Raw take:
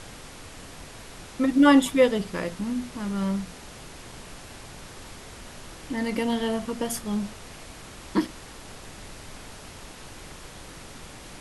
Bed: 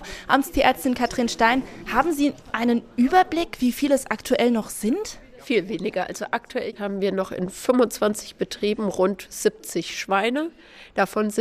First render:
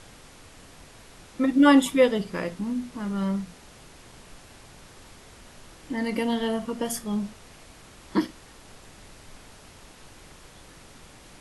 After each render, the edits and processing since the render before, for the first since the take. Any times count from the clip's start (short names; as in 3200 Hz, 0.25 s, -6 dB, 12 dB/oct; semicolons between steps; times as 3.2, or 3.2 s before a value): noise print and reduce 6 dB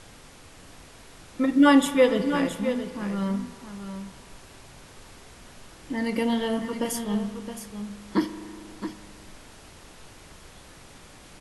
echo 0.668 s -9.5 dB; spring tank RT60 2.5 s, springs 39 ms, chirp 30 ms, DRR 11.5 dB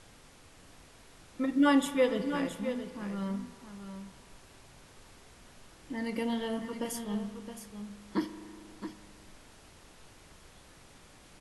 gain -7.5 dB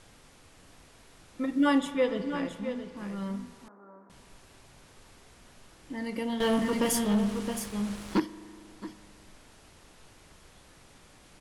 1.78–2.97 air absorption 52 m; 3.68–4.1 elliptic band-pass 260–1400 Hz; 6.4–8.2 sample leveller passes 3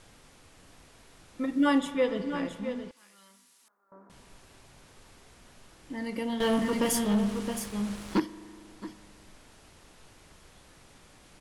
2.91–3.92 differentiator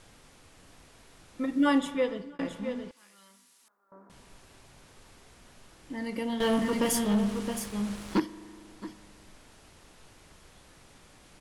1.81–2.39 fade out equal-power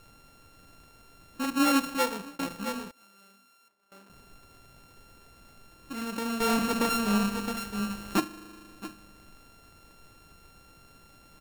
sample sorter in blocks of 32 samples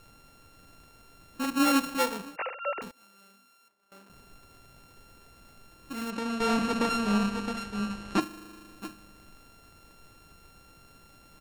2.36–2.82 sine-wave speech; 6.1–8.21 air absorption 55 m